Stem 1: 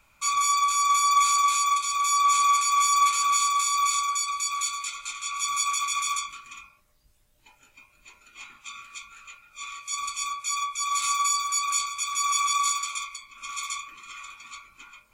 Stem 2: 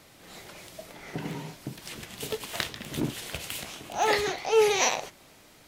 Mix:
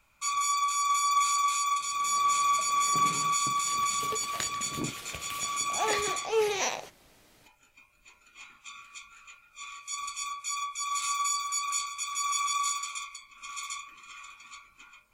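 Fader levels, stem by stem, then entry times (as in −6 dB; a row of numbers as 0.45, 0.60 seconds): −5.0, −5.5 decibels; 0.00, 1.80 seconds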